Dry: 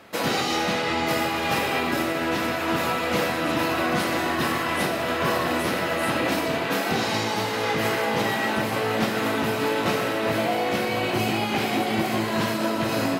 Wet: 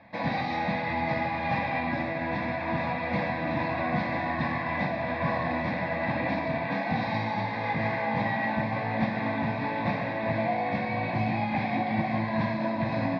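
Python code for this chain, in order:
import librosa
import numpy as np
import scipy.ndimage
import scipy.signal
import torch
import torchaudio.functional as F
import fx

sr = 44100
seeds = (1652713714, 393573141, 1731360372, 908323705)

y = scipy.signal.sosfilt(scipy.signal.butter(4, 3300.0, 'lowpass', fs=sr, output='sos'), x)
y = fx.peak_eq(y, sr, hz=190.0, db=5.5, octaves=2.9)
y = fx.fixed_phaser(y, sr, hz=2000.0, stages=8)
y = y * librosa.db_to_amplitude(-3.0)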